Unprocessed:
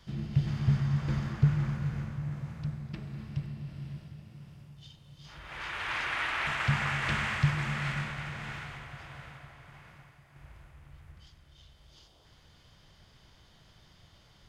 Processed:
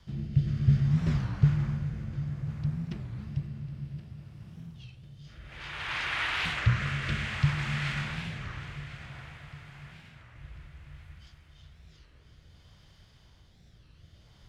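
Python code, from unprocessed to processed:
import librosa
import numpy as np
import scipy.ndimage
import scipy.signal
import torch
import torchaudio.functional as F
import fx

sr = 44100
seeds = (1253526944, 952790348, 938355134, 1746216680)

y = fx.dynamic_eq(x, sr, hz=3800.0, q=0.92, threshold_db=-49.0, ratio=4.0, max_db=5)
y = fx.rotary(y, sr, hz=0.6)
y = fx.peak_eq(y, sr, hz=66.0, db=6.5, octaves=2.4)
y = fx.echo_feedback(y, sr, ms=1048, feedback_pct=47, wet_db=-15)
y = fx.record_warp(y, sr, rpm=33.33, depth_cents=250.0)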